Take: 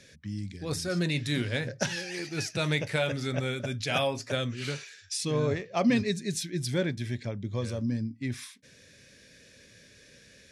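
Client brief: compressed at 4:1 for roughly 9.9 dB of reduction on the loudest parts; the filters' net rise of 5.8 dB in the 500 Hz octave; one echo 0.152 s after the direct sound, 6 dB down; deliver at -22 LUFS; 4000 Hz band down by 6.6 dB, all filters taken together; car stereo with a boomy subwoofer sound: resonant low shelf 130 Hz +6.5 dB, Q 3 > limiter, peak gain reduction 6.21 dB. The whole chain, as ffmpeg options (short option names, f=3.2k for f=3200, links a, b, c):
-af "equalizer=f=500:t=o:g=7.5,equalizer=f=4k:t=o:g=-8.5,acompressor=threshold=-30dB:ratio=4,lowshelf=f=130:t=q:w=3:g=6.5,aecho=1:1:152:0.501,volume=11.5dB,alimiter=limit=-12.5dB:level=0:latency=1"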